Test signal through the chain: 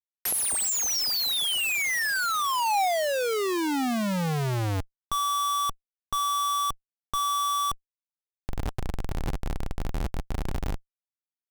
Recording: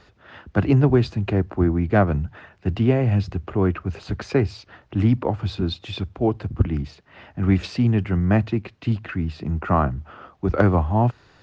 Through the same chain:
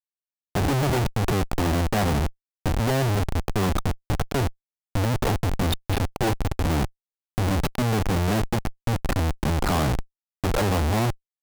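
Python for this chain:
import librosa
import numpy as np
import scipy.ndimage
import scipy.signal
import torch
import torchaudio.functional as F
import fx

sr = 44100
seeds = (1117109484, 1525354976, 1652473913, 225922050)

p1 = fx.quant_dither(x, sr, seeds[0], bits=6, dither='none')
p2 = x + (p1 * librosa.db_to_amplitude(-10.0))
p3 = fx.schmitt(p2, sr, flips_db=-23.5)
p4 = fx.peak_eq(p3, sr, hz=790.0, db=4.5, octaves=0.38)
y = p4 * librosa.db_to_amplitude(-2.5)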